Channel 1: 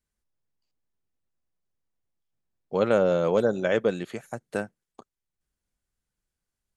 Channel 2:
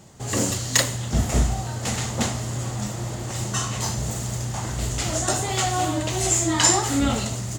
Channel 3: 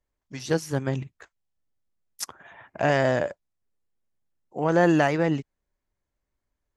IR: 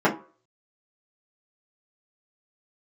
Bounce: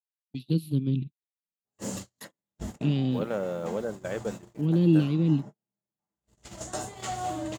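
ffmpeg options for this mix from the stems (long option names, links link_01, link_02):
-filter_complex "[0:a]acrusher=bits=7:mix=0:aa=0.000001,adelay=400,volume=-9.5dB[link_01];[1:a]adelay=1450,volume=-12dB,asplit=2[link_02][link_03];[link_03]volume=-23.5dB[link_04];[2:a]firequalizer=gain_entry='entry(100,0);entry(150,11);entry(280,9);entry(710,-29);entry(1100,-16);entry(1700,-29);entry(2500,-1);entry(4000,10);entry(5700,-24);entry(11000,5)':delay=0.05:min_phase=1,volume=-6dB,asplit=2[link_05][link_06];[link_06]apad=whole_len=398375[link_07];[link_02][link_07]sidechaincompress=threshold=-51dB:ratio=16:attack=12:release=517[link_08];[3:a]atrim=start_sample=2205[link_09];[link_04][link_09]afir=irnorm=-1:irlink=0[link_10];[link_01][link_08][link_05][link_10]amix=inputs=4:normalize=0,agate=range=-47dB:threshold=-35dB:ratio=16:detection=peak,adynamicequalizer=threshold=0.00398:dfrequency=1900:dqfactor=0.7:tfrequency=1900:tqfactor=0.7:attack=5:release=100:ratio=0.375:range=1.5:mode=cutabove:tftype=highshelf"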